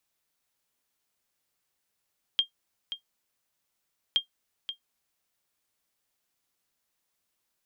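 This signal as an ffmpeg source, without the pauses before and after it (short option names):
-f lavfi -i "aevalsrc='0.188*(sin(2*PI*3210*mod(t,1.77))*exp(-6.91*mod(t,1.77)/0.11)+0.282*sin(2*PI*3210*max(mod(t,1.77)-0.53,0))*exp(-6.91*max(mod(t,1.77)-0.53,0)/0.11))':d=3.54:s=44100"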